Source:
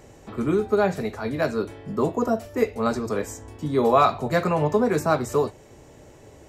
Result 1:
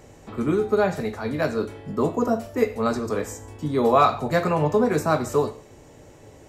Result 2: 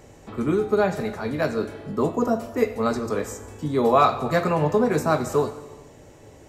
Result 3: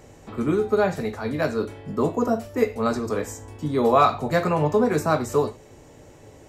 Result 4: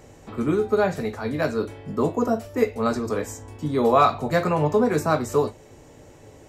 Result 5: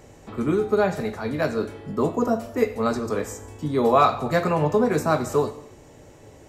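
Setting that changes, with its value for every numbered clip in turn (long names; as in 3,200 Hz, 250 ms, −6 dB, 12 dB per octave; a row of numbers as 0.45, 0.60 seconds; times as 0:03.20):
reverb whose tail is shaped and stops, gate: 200, 480, 130, 80, 300 milliseconds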